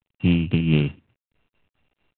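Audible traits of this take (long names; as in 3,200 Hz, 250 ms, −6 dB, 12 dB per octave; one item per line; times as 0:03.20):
a buzz of ramps at a fixed pitch in blocks of 16 samples
tremolo triangle 4.5 Hz, depth 45%
a quantiser's noise floor 12 bits, dither none
G.726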